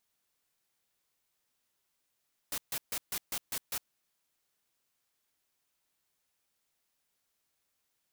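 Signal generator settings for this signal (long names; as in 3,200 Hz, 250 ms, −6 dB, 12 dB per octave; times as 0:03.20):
noise bursts white, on 0.06 s, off 0.14 s, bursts 7, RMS −35 dBFS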